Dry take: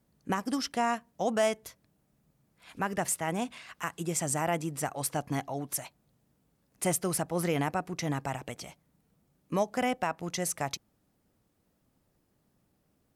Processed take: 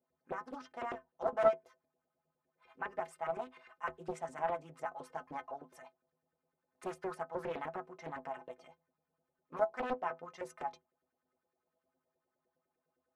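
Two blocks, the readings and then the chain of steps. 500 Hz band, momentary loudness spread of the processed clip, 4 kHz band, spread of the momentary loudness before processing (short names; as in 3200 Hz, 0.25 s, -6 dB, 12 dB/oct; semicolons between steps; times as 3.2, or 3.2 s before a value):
-4.5 dB, 13 LU, -19.5 dB, 10 LU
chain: LFO band-pass saw up 9.8 Hz 420–1700 Hz; metallic resonator 76 Hz, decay 0.26 s, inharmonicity 0.03; Doppler distortion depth 0.53 ms; gain +6.5 dB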